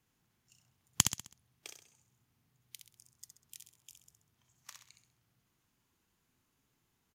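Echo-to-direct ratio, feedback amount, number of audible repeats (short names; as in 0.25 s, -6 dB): -5.5 dB, 41%, 4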